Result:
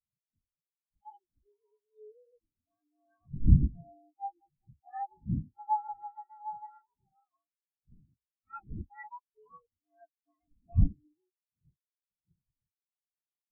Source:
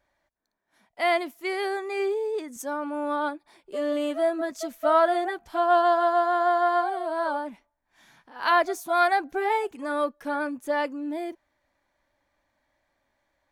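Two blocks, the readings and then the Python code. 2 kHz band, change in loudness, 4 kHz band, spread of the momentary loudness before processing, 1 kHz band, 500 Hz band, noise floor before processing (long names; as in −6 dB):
−30.0 dB, −7.0 dB, below −40 dB, 11 LU, −15.5 dB, −36.0 dB, −76 dBFS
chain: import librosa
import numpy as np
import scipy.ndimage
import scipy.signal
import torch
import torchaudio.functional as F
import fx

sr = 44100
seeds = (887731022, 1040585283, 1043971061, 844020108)

y = fx.partial_stretch(x, sr, pct=119)
y = fx.dmg_wind(y, sr, seeds[0], corner_hz=250.0, level_db=-26.0)
y = fx.spectral_expand(y, sr, expansion=4.0)
y = F.gain(torch.from_numpy(y), -3.5).numpy()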